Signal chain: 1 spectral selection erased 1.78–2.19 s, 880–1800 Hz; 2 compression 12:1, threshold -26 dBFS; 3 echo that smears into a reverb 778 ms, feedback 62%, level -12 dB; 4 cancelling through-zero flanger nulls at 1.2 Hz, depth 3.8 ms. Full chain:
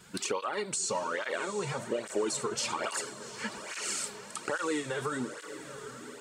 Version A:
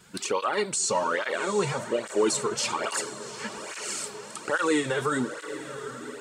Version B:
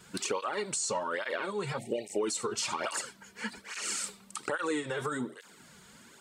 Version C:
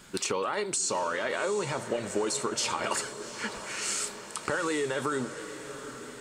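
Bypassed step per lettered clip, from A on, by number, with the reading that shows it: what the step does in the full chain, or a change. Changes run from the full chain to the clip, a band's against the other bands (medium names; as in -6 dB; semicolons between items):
2, mean gain reduction 3.5 dB; 3, momentary loudness spread change +4 LU; 4, crest factor change +2.0 dB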